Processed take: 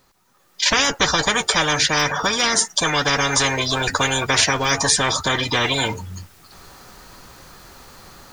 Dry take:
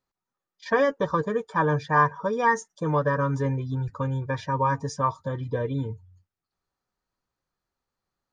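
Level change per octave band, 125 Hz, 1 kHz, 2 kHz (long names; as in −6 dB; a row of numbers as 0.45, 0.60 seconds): −1.0, +3.0, +11.0 decibels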